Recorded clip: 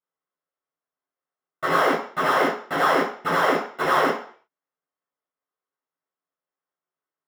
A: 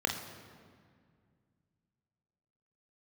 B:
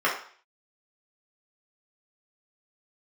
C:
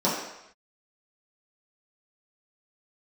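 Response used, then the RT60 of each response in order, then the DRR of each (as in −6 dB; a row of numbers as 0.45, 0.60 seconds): B; 2.0 s, 0.50 s, non-exponential decay; 2.5, −6.0, −9.0 decibels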